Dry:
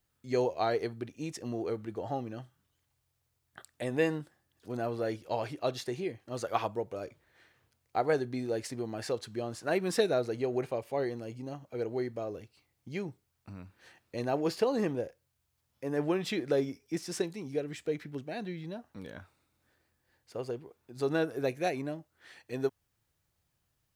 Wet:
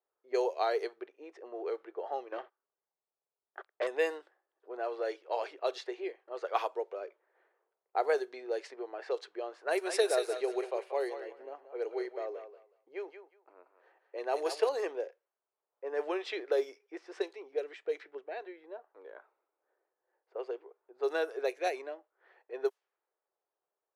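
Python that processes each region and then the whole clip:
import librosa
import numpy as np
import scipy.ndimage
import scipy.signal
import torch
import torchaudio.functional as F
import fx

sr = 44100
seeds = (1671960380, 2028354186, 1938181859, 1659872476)

y = fx.chain(x, sr, fx.lowpass(hz=2900.0, slope=12),
    fx.leveller(passes=3), at=(2.32, 3.87))
y = fx.chain(y, sr, fx.peak_eq(hz=10000.0, db=10.0, octaves=0.51),
    fx.echo_thinned(ms=184, feedback_pct=32, hz=770.0, wet_db=-6.0), at=(9.59, 14.69))
y = scipy.signal.sosfilt(scipy.signal.ellip(4, 1.0, 50, 390.0, 'highpass', fs=sr, output='sos'), y)
y = fx.env_lowpass(y, sr, base_hz=890.0, full_db=-27.0)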